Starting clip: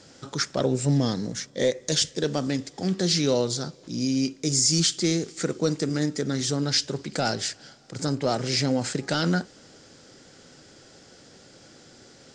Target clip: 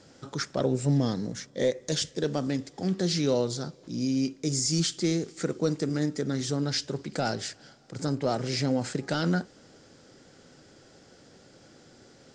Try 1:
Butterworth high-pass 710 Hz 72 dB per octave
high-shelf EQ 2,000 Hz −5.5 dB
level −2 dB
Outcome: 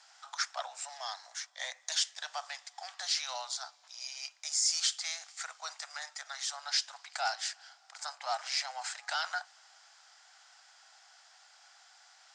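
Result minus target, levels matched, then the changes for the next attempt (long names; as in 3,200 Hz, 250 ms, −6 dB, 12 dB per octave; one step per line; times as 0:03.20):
1,000 Hz band +5.5 dB
remove: Butterworth high-pass 710 Hz 72 dB per octave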